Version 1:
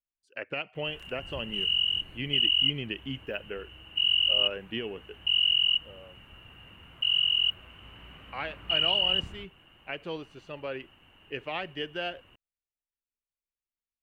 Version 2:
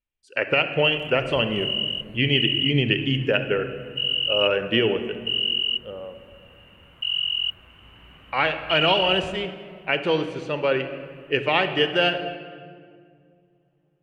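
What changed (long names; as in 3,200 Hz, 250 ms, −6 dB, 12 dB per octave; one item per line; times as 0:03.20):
speech +11.0 dB
reverb: on, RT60 2.0 s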